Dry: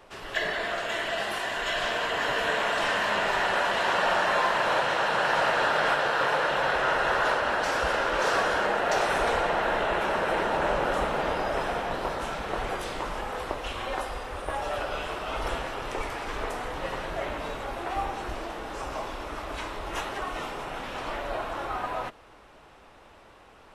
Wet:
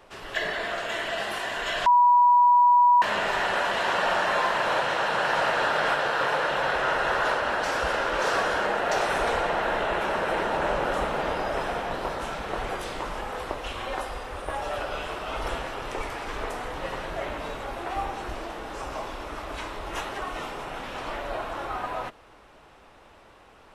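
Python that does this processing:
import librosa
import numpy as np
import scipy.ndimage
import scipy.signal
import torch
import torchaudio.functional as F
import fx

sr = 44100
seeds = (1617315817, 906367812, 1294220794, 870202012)

y = fx.edit(x, sr, fx.bleep(start_s=1.86, length_s=1.16, hz=973.0, db=-14.0), tone=tone)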